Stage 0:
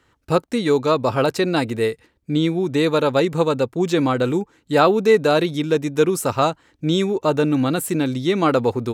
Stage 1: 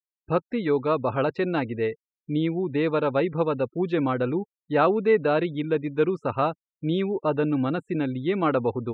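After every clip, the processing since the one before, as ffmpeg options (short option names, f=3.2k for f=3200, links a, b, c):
-af "afftfilt=real='re*gte(hypot(re,im),0.02)':imag='im*gte(hypot(re,im),0.02)':win_size=1024:overlap=0.75,lowpass=f=3k:w=0.5412,lowpass=f=3k:w=1.3066,volume=-5.5dB"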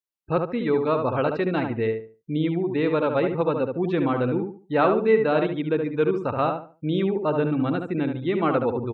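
-filter_complex "[0:a]asplit=2[a][b];[b]adelay=72,lowpass=f=2k:p=1,volume=-4.5dB,asplit=2[c][d];[d]adelay=72,lowpass=f=2k:p=1,volume=0.29,asplit=2[e][f];[f]adelay=72,lowpass=f=2k:p=1,volume=0.29,asplit=2[g][h];[h]adelay=72,lowpass=f=2k:p=1,volume=0.29[i];[a][c][e][g][i]amix=inputs=5:normalize=0"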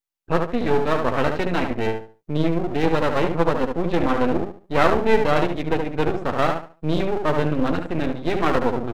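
-filter_complex "[0:a]asplit=2[a][b];[b]adelay=12,volume=-8dB[c];[a][c]amix=inputs=2:normalize=0,aeval=exprs='max(val(0),0)':c=same,volume=5.5dB"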